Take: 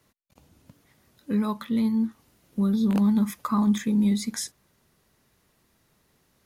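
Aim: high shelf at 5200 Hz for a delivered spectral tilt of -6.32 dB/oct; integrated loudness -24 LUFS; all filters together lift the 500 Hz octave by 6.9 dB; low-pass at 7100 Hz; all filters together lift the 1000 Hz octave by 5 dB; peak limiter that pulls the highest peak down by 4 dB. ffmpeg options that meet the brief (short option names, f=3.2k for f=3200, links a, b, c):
-af "lowpass=7.1k,equalizer=f=500:t=o:g=8,equalizer=f=1k:t=o:g=4,highshelf=f=5.2k:g=3,volume=1dB,alimiter=limit=-15dB:level=0:latency=1"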